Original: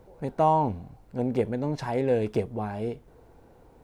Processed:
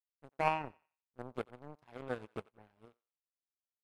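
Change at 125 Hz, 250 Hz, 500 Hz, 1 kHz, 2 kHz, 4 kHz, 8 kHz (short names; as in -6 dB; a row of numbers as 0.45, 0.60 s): -19.5 dB, -19.0 dB, -16.0 dB, -11.5 dB, -1.5 dB, -6.5 dB, n/a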